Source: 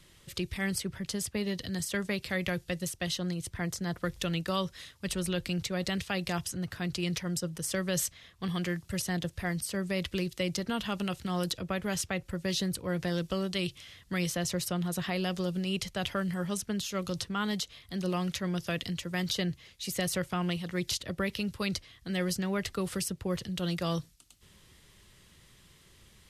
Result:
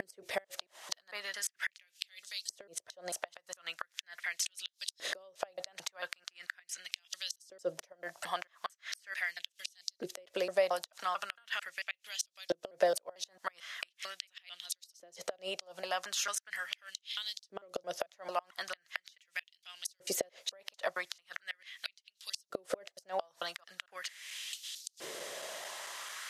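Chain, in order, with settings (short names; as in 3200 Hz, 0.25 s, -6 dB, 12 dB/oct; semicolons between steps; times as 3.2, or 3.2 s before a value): slices in reverse order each 0.223 s, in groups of 4; compressor 10:1, threshold -46 dBFS, peak gain reduction 20.5 dB; LFO high-pass saw up 0.4 Hz 370–4800 Hz; flipped gate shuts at -38 dBFS, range -30 dB; fifteen-band EQ 630 Hz +12 dB, 1600 Hz +4 dB, 6300 Hz +5 dB; gain +13.5 dB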